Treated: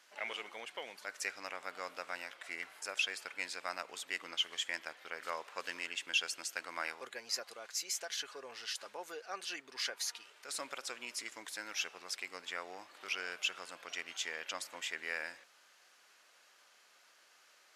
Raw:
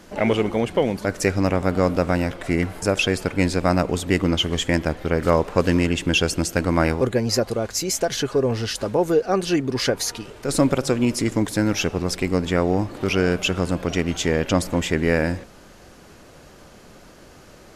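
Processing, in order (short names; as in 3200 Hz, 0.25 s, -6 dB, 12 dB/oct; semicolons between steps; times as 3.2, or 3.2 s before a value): Bessel high-pass 1900 Hz, order 2; high shelf 5100 Hz -7 dB; gain -8 dB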